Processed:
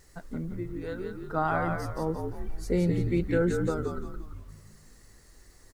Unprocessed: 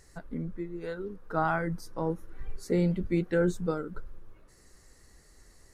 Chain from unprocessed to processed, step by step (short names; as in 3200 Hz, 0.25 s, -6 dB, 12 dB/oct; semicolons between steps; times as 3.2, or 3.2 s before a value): frequency-shifting echo 0.173 s, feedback 40%, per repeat -55 Hz, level -4.5 dB; wow and flutter 29 cents; bit-crush 11-bit